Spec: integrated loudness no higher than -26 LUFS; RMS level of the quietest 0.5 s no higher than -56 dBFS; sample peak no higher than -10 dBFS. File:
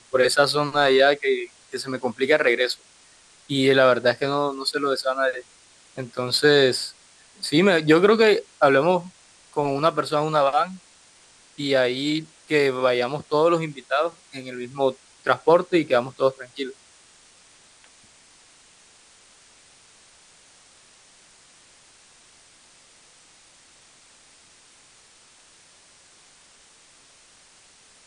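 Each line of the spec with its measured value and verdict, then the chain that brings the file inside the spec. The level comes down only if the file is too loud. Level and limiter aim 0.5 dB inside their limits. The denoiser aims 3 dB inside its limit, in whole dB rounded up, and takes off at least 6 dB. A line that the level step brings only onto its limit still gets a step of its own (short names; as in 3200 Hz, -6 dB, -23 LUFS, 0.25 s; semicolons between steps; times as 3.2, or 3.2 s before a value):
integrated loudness -21.0 LUFS: fail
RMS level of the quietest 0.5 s -54 dBFS: fail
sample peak -4.0 dBFS: fail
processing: gain -5.5 dB; limiter -10.5 dBFS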